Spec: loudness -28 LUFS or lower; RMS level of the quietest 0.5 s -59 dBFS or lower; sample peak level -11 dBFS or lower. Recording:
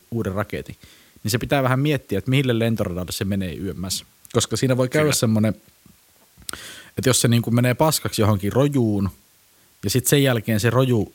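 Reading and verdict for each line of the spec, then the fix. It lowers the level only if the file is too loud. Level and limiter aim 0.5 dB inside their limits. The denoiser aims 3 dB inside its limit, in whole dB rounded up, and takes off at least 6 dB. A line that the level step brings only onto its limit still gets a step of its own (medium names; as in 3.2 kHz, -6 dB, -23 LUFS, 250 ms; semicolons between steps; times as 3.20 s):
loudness -21.0 LUFS: fail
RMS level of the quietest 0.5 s -56 dBFS: fail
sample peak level -2.0 dBFS: fail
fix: trim -7.5 dB; peak limiter -11.5 dBFS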